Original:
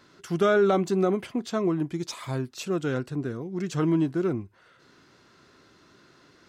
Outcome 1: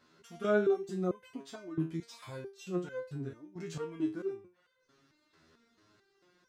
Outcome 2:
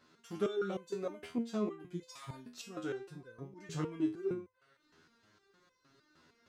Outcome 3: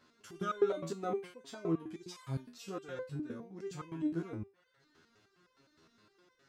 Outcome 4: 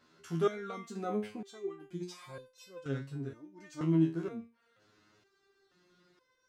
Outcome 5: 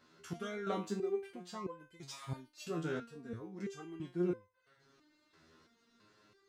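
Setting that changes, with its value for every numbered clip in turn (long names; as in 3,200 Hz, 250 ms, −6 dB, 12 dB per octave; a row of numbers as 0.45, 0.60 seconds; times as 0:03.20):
step-sequenced resonator, speed: 4.5, 6.5, 9.7, 2.1, 3 Hertz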